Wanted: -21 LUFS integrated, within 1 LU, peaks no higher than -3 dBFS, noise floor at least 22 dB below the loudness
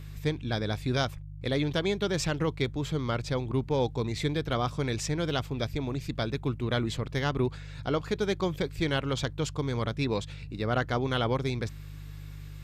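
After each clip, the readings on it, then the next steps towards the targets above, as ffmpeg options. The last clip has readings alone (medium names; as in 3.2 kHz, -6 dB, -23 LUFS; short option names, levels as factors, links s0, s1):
hum 50 Hz; highest harmonic 150 Hz; hum level -40 dBFS; loudness -30.5 LUFS; peak level -15.5 dBFS; loudness target -21.0 LUFS
-> -af "bandreject=f=50:t=h:w=4,bandreject=f=100:t=h:w=4,bandreject=f=150:t=h:w=4"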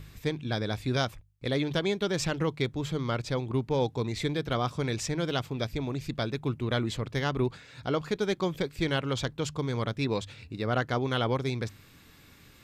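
hum not found; loudness -31.0 LUFS; peak level -15.5 dBFS; loudness target -21.0 LUFS
-> -af "volume=3.16"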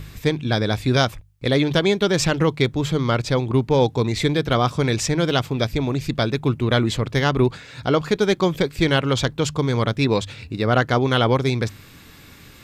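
loudness -21.0 LUFS; peak level -5.5 dBFS; noise floor -46 dBFS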